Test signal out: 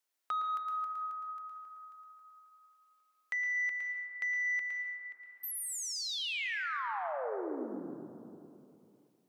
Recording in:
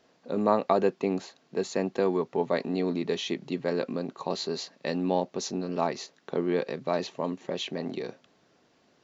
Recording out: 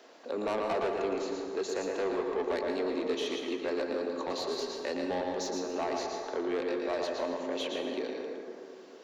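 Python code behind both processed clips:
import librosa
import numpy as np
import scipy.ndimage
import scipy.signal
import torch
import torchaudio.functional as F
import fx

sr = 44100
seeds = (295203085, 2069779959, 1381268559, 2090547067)

y = scipy.signal.sosfilt(scipy.signal.butter(4, 290.0, 'highpass', fs=sr, output='sos'), x)
y = y + 10.0 ** (-6.0 / 20.0) * np.pad(y, (int(113 * sr / 1000.0), 0))[:len(y)]
y = 10.0 ** (-25.0 / 20.0) * np.tanh(y / 10.0 ** (-25.0 / 20.0))
y = fx.rev_plate(y, sr, seeds[0], rt60_s=2.0, hf_ratio=0.35, predelay_ms=115, drr_db=4.0)
y = fx.band_squash(y, sr, depth_pct=40)
y = y * librosa.db_to_amplitude(-2.0)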